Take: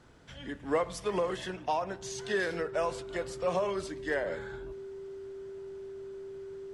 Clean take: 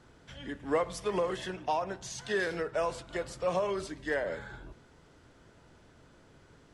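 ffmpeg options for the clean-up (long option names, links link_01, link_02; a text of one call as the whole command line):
ffmpeg -i in.wav -af "bandreject=frequency=390:width=30" out.wav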